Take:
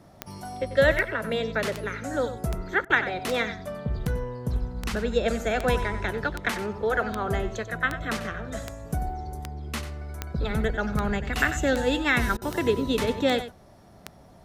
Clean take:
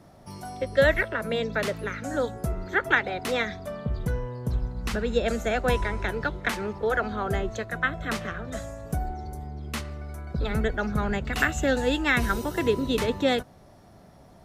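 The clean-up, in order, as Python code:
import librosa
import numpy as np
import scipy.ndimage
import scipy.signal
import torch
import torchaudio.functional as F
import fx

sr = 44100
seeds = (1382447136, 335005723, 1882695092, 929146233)

y = fx.fix_declick_ar(x, sr, threshold=10.0)
y = fx.fix_interpolate(y, sr, at_s=(2.85, 12.37), length_ms=46.0)
y = fx.fix_echo_inverse(y, sr, delay_ms=93, level_db=-12.0)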